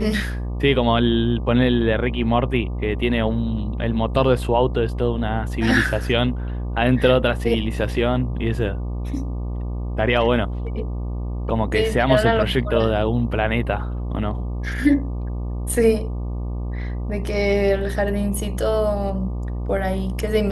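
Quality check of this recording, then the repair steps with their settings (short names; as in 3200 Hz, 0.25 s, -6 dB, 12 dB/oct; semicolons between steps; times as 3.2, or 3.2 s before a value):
buzz 60 Hz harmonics 20 -26 dBFS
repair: de-hum 60 Hz, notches 20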